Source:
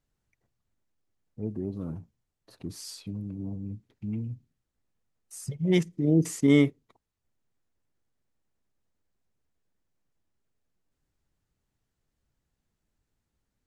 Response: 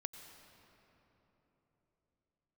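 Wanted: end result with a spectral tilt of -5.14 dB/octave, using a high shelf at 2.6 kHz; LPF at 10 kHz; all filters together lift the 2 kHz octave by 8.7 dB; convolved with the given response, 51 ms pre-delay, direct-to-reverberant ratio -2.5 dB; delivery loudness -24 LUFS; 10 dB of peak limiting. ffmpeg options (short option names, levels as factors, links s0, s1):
-filter_complex "[0:a]lowpass=10000,equalizer=f=2000:t=o:g=6,highshelf=f=2600:g=7.5,alimiter=limit=0.15:level=0:latency=1,asplit=2[s0][s1];[1:a]atrim=start_sample=2205,adelay=51[s2];[s1][s2]afir=irnorm=-1:irlink=0,volume=1.78[s3];[s0][s3]amix=inputs=2:normalize=0,volume=1.68"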